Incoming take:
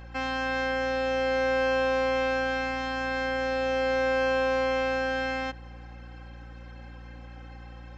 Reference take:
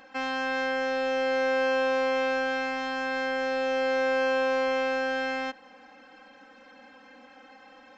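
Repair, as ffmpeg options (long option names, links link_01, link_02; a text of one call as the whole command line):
ffmpeg -i in.wav -af "bandreject=frequency=58.4:width_type=h:width=4,bandreject=frequency=116.8:width_type=h:width=4,bandreject=frequency=175.2:width_type=h:width=4,bandreject=frequency=233.6:width_type=h:width=4,bandreject=frequency=292:width_type=h:width=4,bandreject=frequency=350.4:width_type=h:width=4" out.wav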